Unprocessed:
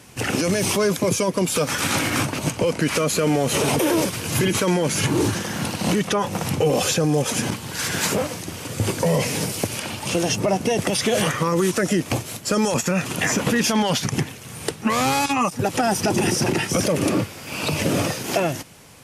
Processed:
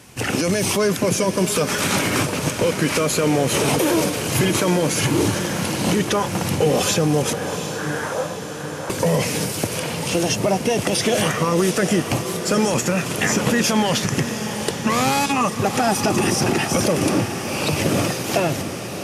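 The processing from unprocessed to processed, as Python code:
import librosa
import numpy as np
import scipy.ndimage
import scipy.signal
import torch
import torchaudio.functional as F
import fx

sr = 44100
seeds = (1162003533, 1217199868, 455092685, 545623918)

y = fx.cheby1_bandpass(x, sr, low_hz=510.0, high_hz=1700.0, order=3, at=(7.33, 8.9))
y = fx.echo_diffused(y, sr, ms=755, feedback_pct=63, wet_db=-9.0)
y = y * librosa.db_to_amplitude(1.0)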